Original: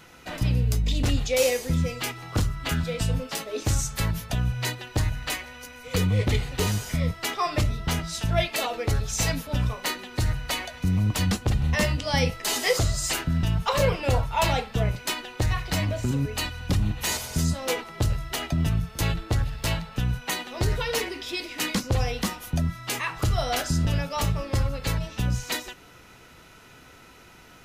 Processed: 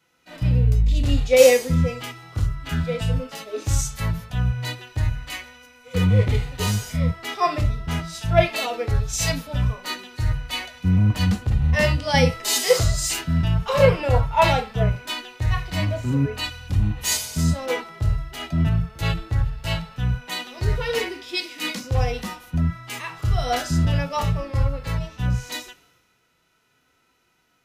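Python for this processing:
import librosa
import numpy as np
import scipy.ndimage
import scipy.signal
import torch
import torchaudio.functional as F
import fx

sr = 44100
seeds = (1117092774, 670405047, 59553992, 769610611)

y = fx.hpss(x, sr, part='percussive', gain_db=-13)
y = fx.band_widen(y, sr, depth_pct=70)
y = y * librosa.db_to_amplitude(5.0)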